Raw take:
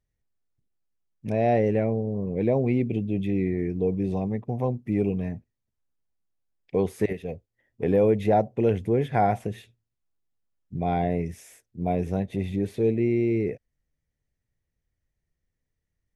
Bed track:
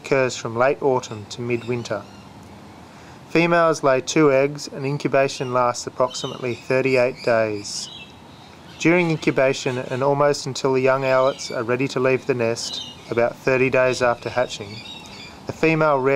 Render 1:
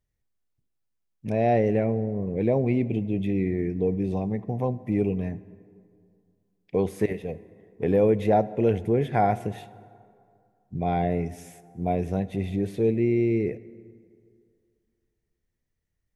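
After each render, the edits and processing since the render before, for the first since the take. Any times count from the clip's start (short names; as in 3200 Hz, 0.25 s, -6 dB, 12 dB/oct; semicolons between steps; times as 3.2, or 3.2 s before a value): plate-style reverb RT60 2.3 s, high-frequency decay 0.55×, DRR 16.5 dB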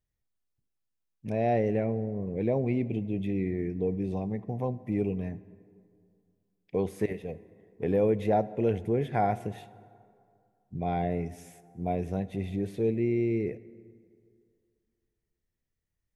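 gain -4.5 dB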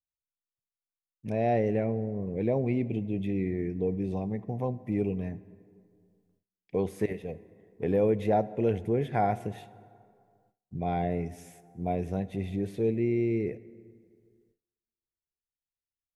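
gate with hold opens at -60 dBFS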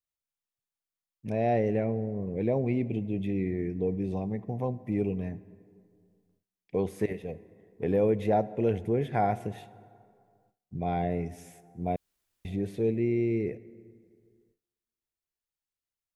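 11.96–12.45 room tone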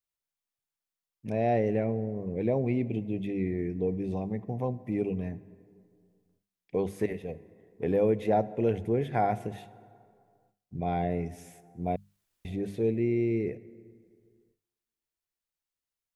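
notches 50/100/150/200 Hz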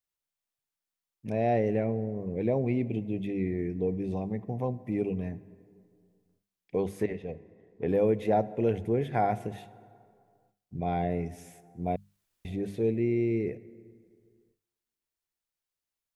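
7.03–7.89 air absorption 85 m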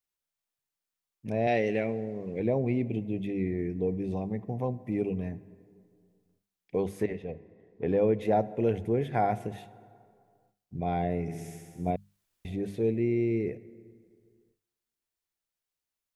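1.47–2.4 weighting filter D; 7.24–8.21 LPF 5600 Hz; 11.21–11.91 flutter echo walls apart 11.5 m, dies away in 1.3 s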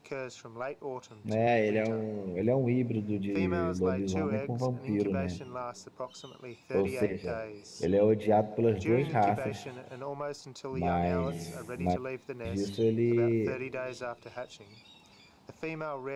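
add bed track -19.5 dB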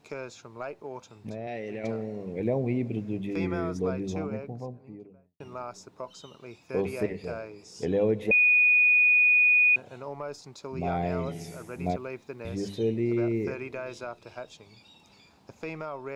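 0.71–1.84 compressor, threshold -32 dBFS; 3.81–5.4 studio fade out; 8.31–9.76 bleep 2470 Hz -17 dBFS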